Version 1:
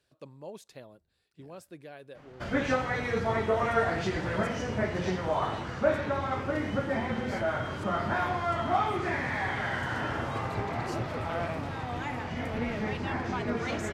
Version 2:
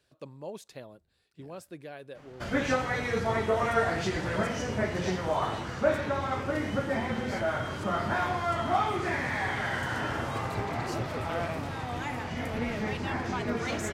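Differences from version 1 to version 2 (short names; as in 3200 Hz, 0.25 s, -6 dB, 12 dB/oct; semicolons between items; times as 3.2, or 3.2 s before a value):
speech +3.0 dB; background: add high shelf 6400 Hz +10 dB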